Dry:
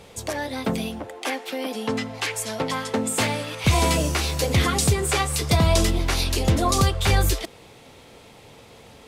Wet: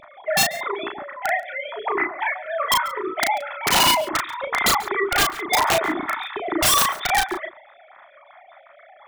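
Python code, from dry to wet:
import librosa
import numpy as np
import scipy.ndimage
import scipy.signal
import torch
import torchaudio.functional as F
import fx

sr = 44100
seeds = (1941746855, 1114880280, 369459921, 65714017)

p1 = fx.sine_speech(x, sr)
p2 = fx.peak_eq(p1, sr, hz=1900.0, db=3.0, octaves=0.34)
p3 = fx.notch(p2, sr, hz=1600.0, q=10.0)
p4 = fx.rider(p3, sr, range_db=3, speed_s=2.0)
p5 = p3 + F.gain(torch.from_numpy(p4), 3.0).numpy()
p6 = fx.fixed_phaser(p5, sr, hz=1200.0, stages=4)
p7 = (np.mod(10.0 ** (10.5 / 20.0) * p6 + 1.0, 2.0) - 1.0) / 10.0 ** (10.5 / 20.0)
p8 = fx.doubler(p7, sr, ms=35.0, db=-4.0)
p9 = p8 + 10.0 ** (-20.0 / 20.0) * np.pad(p8, (int(139 * sr / 1000.0), 0))[:len(p8)]
y = F.gain(torch.from_numpy(p9), -2.5).numpy()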